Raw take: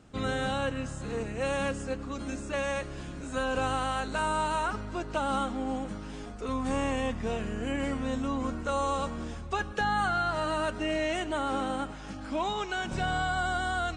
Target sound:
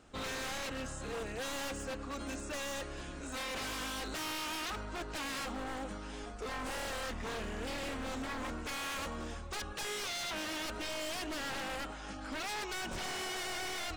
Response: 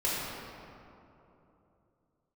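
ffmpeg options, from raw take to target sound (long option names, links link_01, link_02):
-af "equalizer=frequency=140:width=0.67:gain=-10.5,aeval=exprs='0.02*(abs(mod(val(0)/0.02+3,4)-2)-1)':channel_layout=same"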